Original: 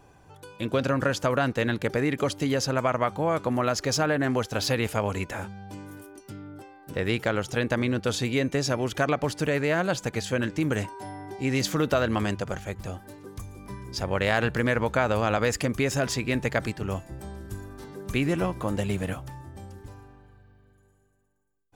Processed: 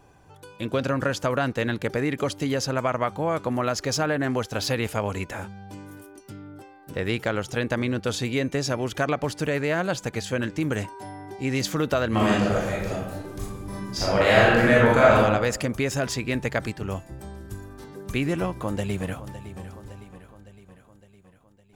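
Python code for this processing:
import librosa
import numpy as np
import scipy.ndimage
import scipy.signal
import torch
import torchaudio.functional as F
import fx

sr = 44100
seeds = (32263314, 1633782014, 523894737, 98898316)

y = fx.reverb_throw(x, sr, start_s=12.09, length_s=3.07, rt60_s=1.0, drr_db=-7.0)
y = fx.echo_throw(y, sr, start_s=18.44, length_s=0.84, ms=560, feedback_pct=60, wet_db=-14.0)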